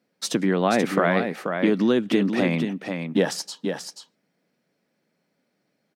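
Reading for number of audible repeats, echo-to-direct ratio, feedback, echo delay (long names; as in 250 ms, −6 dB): 1, −6.5 dB, repeats not evenly spaced, 484 ms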